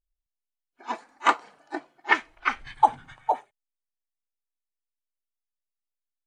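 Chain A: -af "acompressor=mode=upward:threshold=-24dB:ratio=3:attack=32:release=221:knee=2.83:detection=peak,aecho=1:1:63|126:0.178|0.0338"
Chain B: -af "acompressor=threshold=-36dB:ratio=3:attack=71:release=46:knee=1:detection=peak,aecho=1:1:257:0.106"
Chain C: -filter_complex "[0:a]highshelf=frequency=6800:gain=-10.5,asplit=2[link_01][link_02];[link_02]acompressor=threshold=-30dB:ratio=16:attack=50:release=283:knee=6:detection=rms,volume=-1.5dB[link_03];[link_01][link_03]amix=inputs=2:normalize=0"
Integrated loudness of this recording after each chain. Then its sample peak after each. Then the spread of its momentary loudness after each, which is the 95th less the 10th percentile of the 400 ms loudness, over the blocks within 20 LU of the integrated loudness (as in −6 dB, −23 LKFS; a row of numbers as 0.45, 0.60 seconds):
−26.0, −34.5, −25.5 LKFS; −4.5, −12.0, −4.0 dBFS; 9, 8, 12 LU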